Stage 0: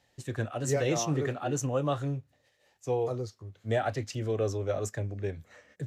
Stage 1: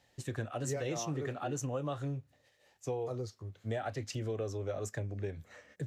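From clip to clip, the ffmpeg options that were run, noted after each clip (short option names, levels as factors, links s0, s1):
-af "acompressor=threshold=0.02:ratio=4"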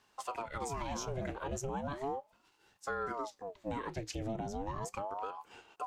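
-af "alimiter=level_in=1.78:limit=0.0631:level=0:latency=1:release=124,volume=0.562,aeval=exprs='val(0)*sin(2*PI*580*n/s+580*0.65/0.36*sin(2*PI*0.36*n/s))':c=same,volume=1.33"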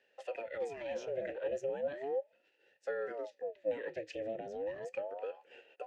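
-filter_complex "[0:a]asplit=3[s0][s1][s2];[s0]bandpass=f=530:t=q:w=8,volume=1[s3];[s1]bandpass=f=1840:t=q:w=8,volume=0.501[s4];[s2]bandpass=f=2480:t=q:w=8,volume=0.355[s5];[s3][s4][s5]amix=inputs=3:normalize=0,volume=3.55"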